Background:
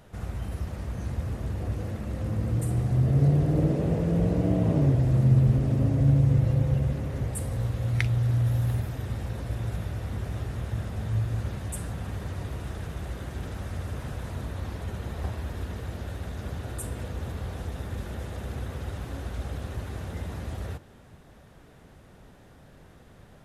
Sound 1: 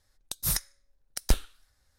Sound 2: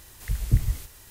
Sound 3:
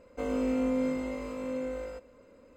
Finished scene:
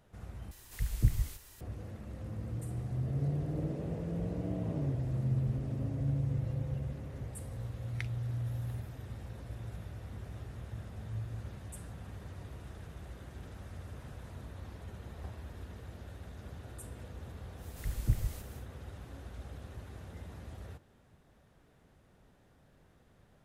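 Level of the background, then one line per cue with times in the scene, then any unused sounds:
background −12 dB
0:00.51: overwrite with 2 −6 dB
0:17.56: mix in 2 −8.5 dB, fades 0.10 s
not used: 1, 3

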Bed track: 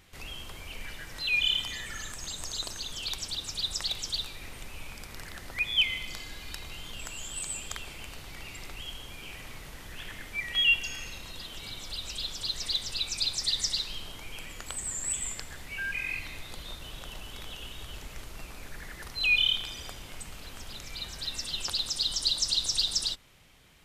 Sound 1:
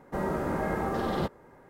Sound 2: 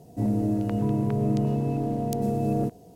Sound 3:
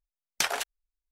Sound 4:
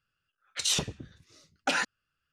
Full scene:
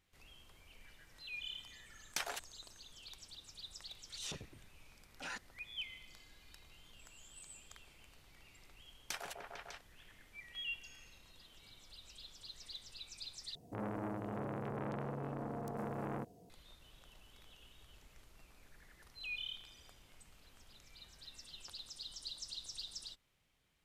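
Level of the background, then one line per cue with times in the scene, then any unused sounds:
bed track −19 dB
0:01.76: mix in 3 −12 dB
0:03.53: mix in 4 −15.5 dB + transient designer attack −11 dB, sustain +5 dB
0:08.70: mix in 3 −16 dB + echo whose low-pass opens from repeat to repeat 150 ms, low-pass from 750 Hz, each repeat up 1 octave, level 0 dB
0:13.55: overwrite with 2 −11 dB + saturating transformer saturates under 1,700 Hz
not used: 1

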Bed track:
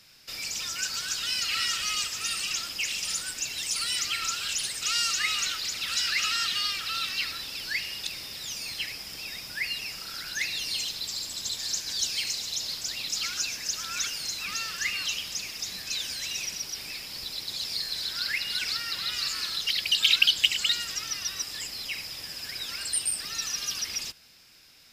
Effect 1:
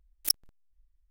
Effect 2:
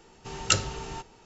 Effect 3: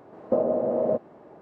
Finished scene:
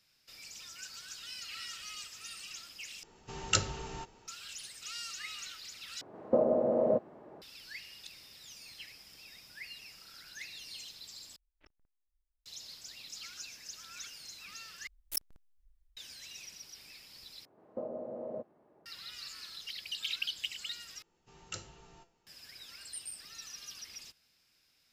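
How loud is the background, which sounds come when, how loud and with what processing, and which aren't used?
bed track −15.5 dB
0:03.03: overwrite with 2 −5 dB
0:06.01: overwrite with 3 −3.5 dB
0:11.36: overwrite with 1 −17 dB + low-pass filter 2,500 Hz 24 dB per octave
0:14.87: overwrite with 1 −1 dB + brickwall limiter −18.5 dBFS
0:17.45: overwrite with 3 −16.5 dB
0:21.02: overwrite with 2 −11.5 dB + tuned comb filter 170 Hz, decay 0.36 s, mix 70%

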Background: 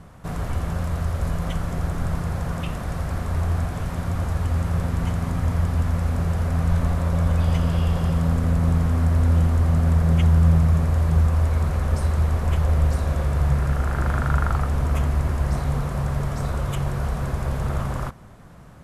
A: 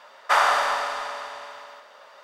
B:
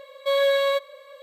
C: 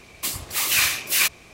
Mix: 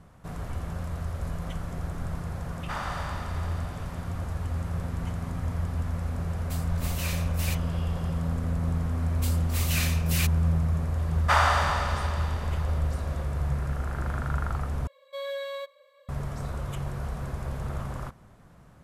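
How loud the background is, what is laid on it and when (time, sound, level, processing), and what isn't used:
background −8 dB
0:02.39: mix in A −17 dB + automatic gain control gain up to 5.5 dB
0:06.27: mix in C −16.5 dB
0:08.99: mix in C −11 dB
0:10.99: mix in A −3 dB
0:14.87: overwrite with B −13.5 dB

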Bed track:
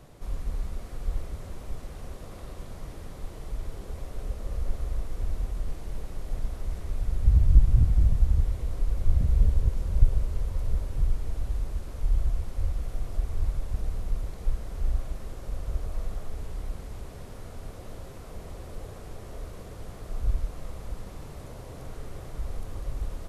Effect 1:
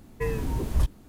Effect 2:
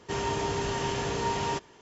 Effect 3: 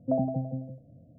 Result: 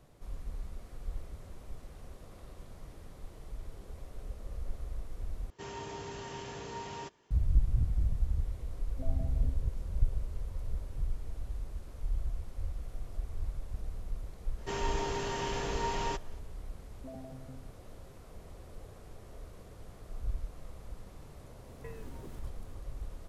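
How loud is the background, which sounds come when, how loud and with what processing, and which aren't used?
bed track −9 dB
0:05.50: overwrite with 2 −12.5 dB
0:08.91: mix in 3 −13.5 dB + downward compressor, threshold −28 dBFS
0:14.58: mix in 2 −4.5 dB + bass and treble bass −3 dB, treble −1 dB
0:16.96: mix in 3 −15 dB + brickwall limiter −24.5 dBFS
0:21.64: mix in 1 −8.5 dB + downward compressor 4 to 1, threshold −35 dBFS

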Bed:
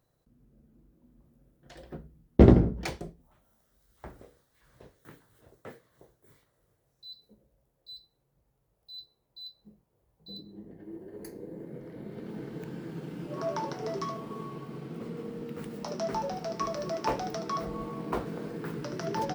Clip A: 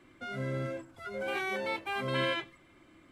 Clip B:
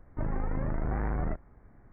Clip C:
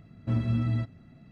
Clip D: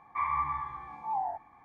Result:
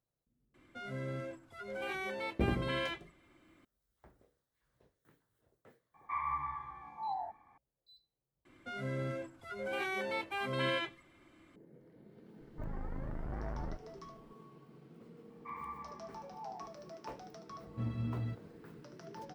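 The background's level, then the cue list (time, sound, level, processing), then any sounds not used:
bed −16.5 dB
0:00.54: mix in A −5.5 dB
0:05.94: mix in D −6 dB
0:08.45: overwrite with A −3 dB
0:12.41: mix in B −10 dB
0:15.30: mix in D −14.5 dB
0:17.50: mix in C −10.5 dB

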